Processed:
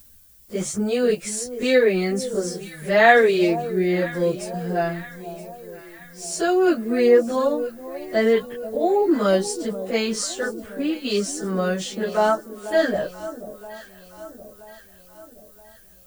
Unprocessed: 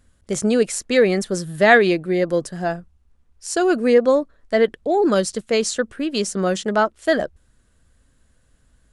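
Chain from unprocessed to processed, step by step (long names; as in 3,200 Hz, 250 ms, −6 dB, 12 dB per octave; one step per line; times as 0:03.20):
background noise violet −50 dBFS
time stretch by phase vocoder 1.8×
delay that swaps between a low-pass and a high-pass 487 ms, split 920 Hz, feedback 69%, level −13 dB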